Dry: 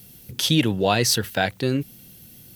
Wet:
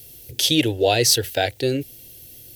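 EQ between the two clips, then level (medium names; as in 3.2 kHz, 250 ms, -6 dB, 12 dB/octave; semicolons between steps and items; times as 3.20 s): static phaser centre 470 Hz, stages 4; +4.5 dB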